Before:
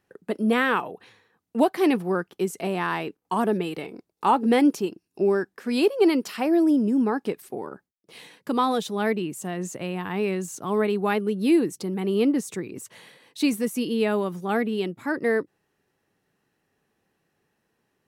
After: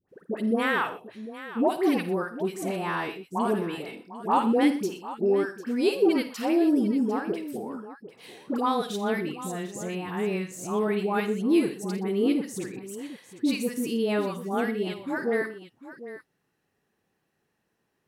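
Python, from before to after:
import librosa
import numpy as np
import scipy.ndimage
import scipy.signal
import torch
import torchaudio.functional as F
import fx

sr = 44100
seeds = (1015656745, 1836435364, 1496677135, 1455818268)

p1 = fx.dispersion(x, sr, late='highs', ms=91.0, hz=940.0)
p2 = p1 + fx.echo_multitap(p1, sr, ms=(53, 81, 122, 749), db=(-13.0, -17.0, -18.0, -14.0), dry=0)
y = p2 * librosa.db_to_amplitude(-3.0)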